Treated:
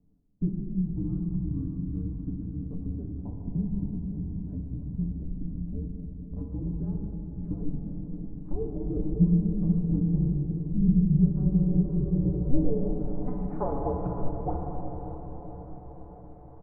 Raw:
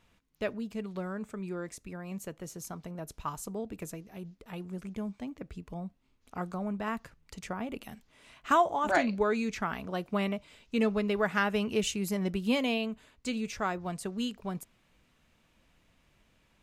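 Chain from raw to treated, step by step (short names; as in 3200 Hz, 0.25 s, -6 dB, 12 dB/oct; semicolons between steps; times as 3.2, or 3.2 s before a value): median filter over 15 samples; treble ducked by the level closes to 690 Hz, closed at -28 dBFS; comb 7.3 ms, depth 50%; in parallel at +3 dB: compressor, threshold -40 dBFS, peak gain reduction 17 dB; on the sum: mistuned SSB -250 Hz 160–3100 Hz; on a send: diffused feedback echo 0.572 s, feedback 60%, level -10 dB; on the sum: shoebox room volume 150 m³, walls hard, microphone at 0.4 m; low-pass sweep 220 Hz -> 770 Hz, 11.2–13.34; gain -2.5 dB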